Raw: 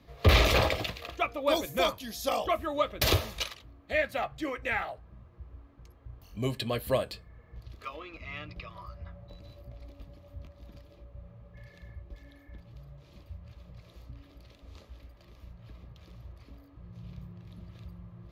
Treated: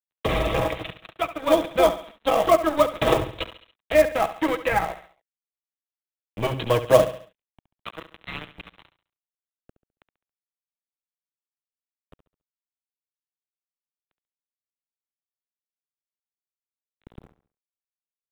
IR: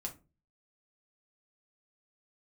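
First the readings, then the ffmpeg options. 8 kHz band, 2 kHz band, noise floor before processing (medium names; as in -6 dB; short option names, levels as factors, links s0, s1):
+1.0 dB, +2.0 dB, -57 dBFS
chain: -filter_complex "[0:a]aecho=1:1:6.2:0.66,aresample=8000,aeval=exprs='sgn(val(0))*max(abs(val(0))-0.015,0)':c=same,aresample=44100,dynaudnorm=f=430:g=7:m=5.31,aecho=1:1:69|138|207|276:0.211|0.0803|0.0305|0.0116,acrossover=split=360|1200[s0][s1][s2];[s0]aeval=exprs='0.0596*(abs(mod(val(0)/0.0596+3,4)-2)-1)':c=same[s3];[s1]acrusher=bits=4:mode=log:mix=0:aa=0.000001[s4];[s2]acompressor=threshold=0.02:ratio=6[s5];[s3][s4][s5]amix=inputs=3:normalize=0,volume=1.33"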